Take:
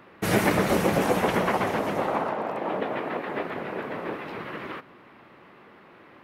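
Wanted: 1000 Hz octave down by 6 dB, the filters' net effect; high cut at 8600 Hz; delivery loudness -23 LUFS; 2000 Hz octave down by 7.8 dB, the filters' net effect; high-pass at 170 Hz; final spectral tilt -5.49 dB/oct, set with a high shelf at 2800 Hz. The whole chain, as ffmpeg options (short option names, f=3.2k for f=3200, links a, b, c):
-af "highpass=170,lowpass=8.6k,equalizer=f=1k:t=o:g=-6,equalizer=f=2k:t=o:g=-4.5,highshelf=f=2.8k:g=-8.5,volume=7dB"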